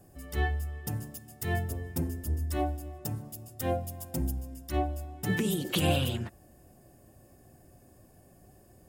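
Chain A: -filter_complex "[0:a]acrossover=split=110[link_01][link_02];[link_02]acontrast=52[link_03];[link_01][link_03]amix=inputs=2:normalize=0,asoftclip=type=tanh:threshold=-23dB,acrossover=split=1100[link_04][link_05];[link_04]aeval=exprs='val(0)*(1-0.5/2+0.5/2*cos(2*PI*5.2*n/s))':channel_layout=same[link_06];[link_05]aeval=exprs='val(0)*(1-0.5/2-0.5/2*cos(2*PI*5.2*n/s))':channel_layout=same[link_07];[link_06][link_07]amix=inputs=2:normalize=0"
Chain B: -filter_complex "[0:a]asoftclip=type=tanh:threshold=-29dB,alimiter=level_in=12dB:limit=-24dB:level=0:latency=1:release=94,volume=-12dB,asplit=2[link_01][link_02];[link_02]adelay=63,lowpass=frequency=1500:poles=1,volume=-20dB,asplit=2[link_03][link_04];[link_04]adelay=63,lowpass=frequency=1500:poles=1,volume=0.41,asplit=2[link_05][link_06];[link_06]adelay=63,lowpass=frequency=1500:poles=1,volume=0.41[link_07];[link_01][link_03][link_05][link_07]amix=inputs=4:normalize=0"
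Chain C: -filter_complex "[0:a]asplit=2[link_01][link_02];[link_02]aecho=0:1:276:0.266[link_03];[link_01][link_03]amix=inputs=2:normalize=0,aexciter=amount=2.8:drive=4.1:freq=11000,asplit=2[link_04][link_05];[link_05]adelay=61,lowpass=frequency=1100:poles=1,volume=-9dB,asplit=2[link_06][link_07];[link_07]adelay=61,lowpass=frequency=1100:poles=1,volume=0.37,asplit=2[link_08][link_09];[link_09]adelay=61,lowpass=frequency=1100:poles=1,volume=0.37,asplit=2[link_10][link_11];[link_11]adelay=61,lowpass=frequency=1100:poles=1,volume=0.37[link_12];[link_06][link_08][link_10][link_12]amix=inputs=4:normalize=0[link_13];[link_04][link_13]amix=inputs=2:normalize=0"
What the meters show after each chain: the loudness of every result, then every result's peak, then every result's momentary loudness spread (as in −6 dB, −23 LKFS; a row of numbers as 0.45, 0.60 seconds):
−34.0, −42.5, −31.5 LKFS; −18.5, −35.0, −14.0 dBFS; 7, 18, 10 LU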